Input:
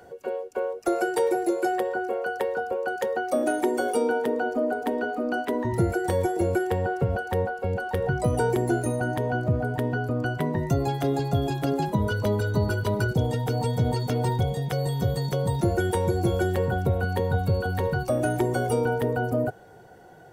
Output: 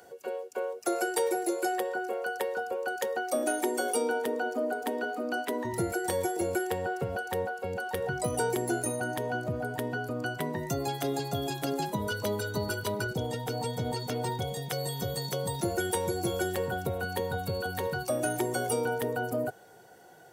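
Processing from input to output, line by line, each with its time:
0:12.92–0:14.42: high-shelf EQ 4,600 Hz −6 dB
whole clip: high-pass filter 230 Hz 6 dB per octave; high-shelf EQ 3,200 Hz +10.5 dB; level −4.5 dB

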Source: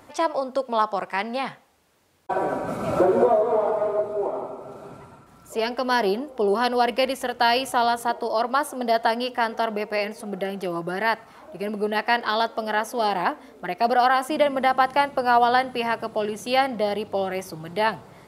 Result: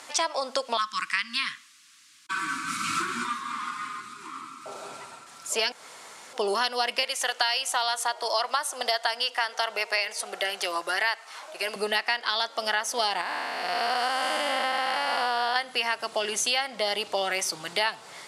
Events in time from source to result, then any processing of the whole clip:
0:00.77–0:04.66: Chebyshev band-stop filter 310–1,100 Hz, order 4
0:05.72–0:06.33: fill with room tone
0:07.03–0:11.76: high-pass filter 440 Hz
0:13.21–0:15.56: spectrum smeared in time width 438 ms
whole clip: meter weighting curve ITU-R 468; downward compressor 6 to 1, threshold −27 dBFS; level +4 dB

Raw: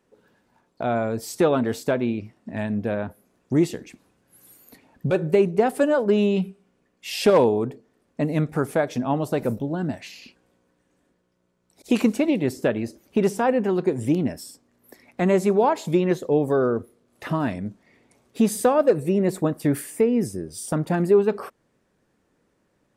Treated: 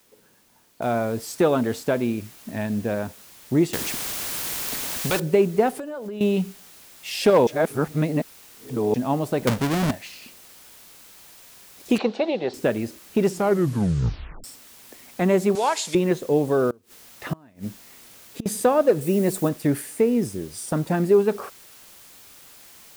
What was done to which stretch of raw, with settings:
0:00.82: noise floor change −61 dB −48 dB
0:03.73–0:05.20: every bin compressed towards the loudest bin 2 to 1
0:05.73–0:06.21: downward compressor 16 to 1, threshold −29 dBFS
0:07.47–0:08.94: reverse
0:09.47–0:09.91: each half-wave held at its own peak
0:11.98–0:12.54: loudspeaker in its box 270–4,500 Hz, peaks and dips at 280 Hz −10 dB, 500 Hz +5 dB, 780 Hz +9 dB, 2,200 Hz −4 dB, 4,000 Hz +8 dB
0:13.26: tape stop 1.18 s
0:15.55–0:15.95: meter weighting curve ITU-R 468
0:16.70–0:18.46: gate with flip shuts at −16 dBFS, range −27 dB
0:19.01–0:19.49: high-shelf EQ 6,900 Hz +11 dB

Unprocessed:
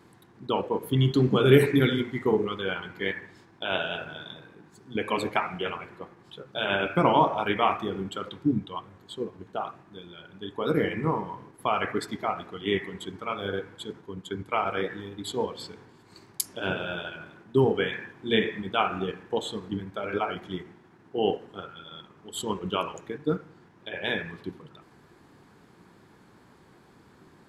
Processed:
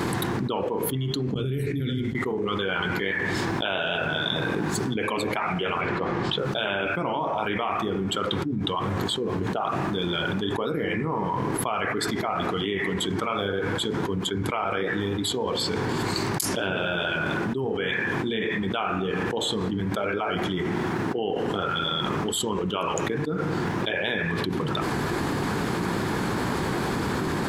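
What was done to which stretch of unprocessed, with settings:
0:01.34–0:02.15: guitar amp tone stack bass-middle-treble 10-0-1
0:05.81–0:06.39: low-pass filter 5,000 Hz
whole clip: envelope flattener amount 100%; level −9.5 dB

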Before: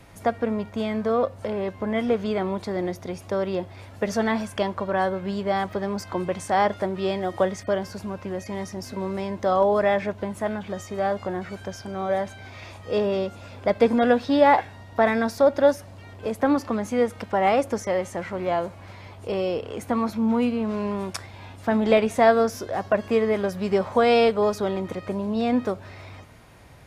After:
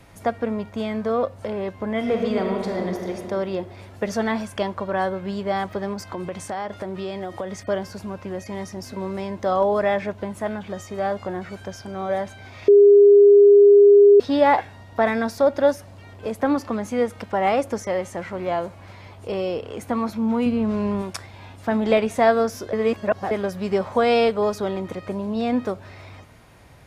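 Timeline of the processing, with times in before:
0:01.97–0:03.10: thrown reverb, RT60 2.4 s, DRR 1.5 dB
0:05.93–0:07.63: downward compressor, threshold −25 dBFS
0:12.68–0:14.20: beep over 406 Hz −7.5 dBFS
0:20.46–0:21.02: low-shelf EQ 230 Hz +8.5 dB
0:22.73–0:23.31: reverse

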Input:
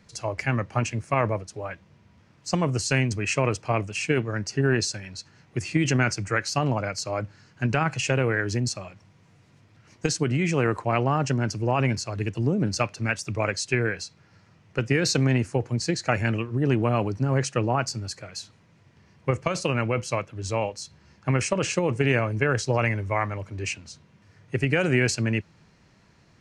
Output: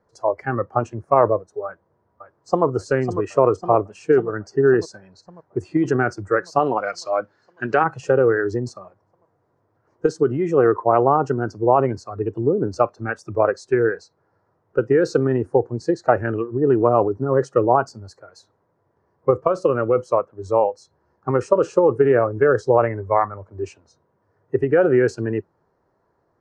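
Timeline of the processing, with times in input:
0:01.65–0:02.65: delay throw 550 ms, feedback 75%, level −7 dB
0:06.59–0:07.84: meter weighting curve D
whole clip: noise reduction from a noise print of the clip's start 12 dB; drawn EQ curve 100 Hz 0 dB, 200 Hz −3 dB, 400 Hz +13 dB, 1,000 Hz +11 dB, 1,700 Hz +2 dB, 2,500 Hz −16 dB, 5,100 Hz −10 dB, 11,000 Hz −14 dB; level −1.5 dB

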